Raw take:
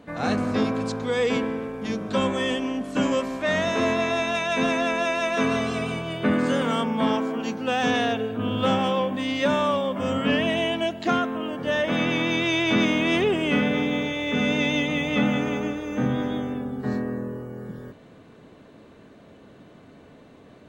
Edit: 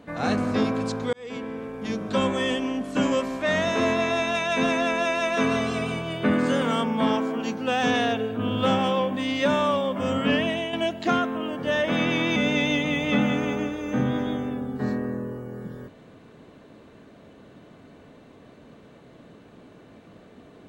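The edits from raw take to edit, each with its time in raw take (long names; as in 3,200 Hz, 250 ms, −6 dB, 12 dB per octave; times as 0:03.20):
0:01.13–0:02.22: fade in equal-power
0:10.35–0:10.73: fade out, to −7.5 dB
0:12.36–0:14.40: remove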